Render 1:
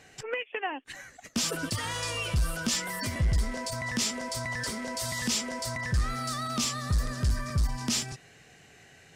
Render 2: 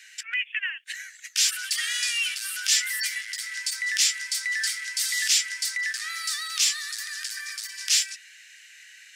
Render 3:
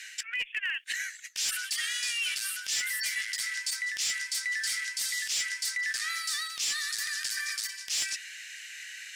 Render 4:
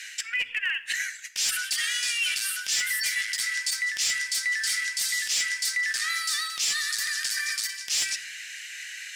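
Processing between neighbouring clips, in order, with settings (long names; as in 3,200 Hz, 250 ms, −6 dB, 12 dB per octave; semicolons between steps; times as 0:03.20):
Butterworth high-pass 1,600 Hz 48 dB per octave; level +8.5 dB
reversed playback; downward compressor 5 to 1, threshold −36 dBFS, peak gain reduction 16.5 dB; reversed playback; asymmetric clip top −31 dBFS; level +6 dB
rectangular room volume 3,500 cubic metres, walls furnished, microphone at 0.96 metres; level +4 dB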